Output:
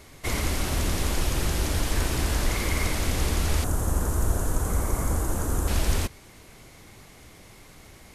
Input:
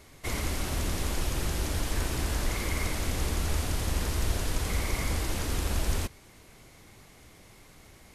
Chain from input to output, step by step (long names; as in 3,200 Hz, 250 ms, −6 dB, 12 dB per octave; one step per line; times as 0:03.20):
0:03.64–0:05.68: flat-topped bell 3,200 Hz −14.5 dB
level +4.5 dB